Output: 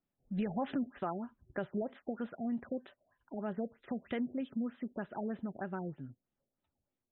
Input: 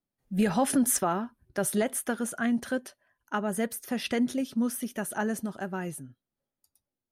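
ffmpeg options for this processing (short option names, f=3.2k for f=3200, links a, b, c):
-af "acompressor=threshold=-42dB:ratio=2,afftfilt=real='re*lt(b*sr/1024,740*pow(4100/740,0.5+0.5*sin(2*PI*3.2*pts/sr)))':imag='im*lt(b*sr/1024,740*pow(4100/740,0.5+0.5*sin(2*PI*3.2*pts/sr)))':win_size=1024:overlap=0.75,volume=1dB"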